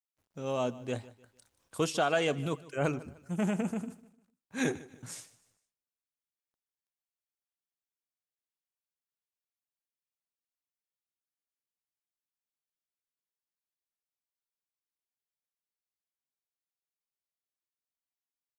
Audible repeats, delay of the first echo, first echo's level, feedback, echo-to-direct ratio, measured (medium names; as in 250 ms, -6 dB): 2, 151 ms, -19.5 dB, 37%, -19.0 dB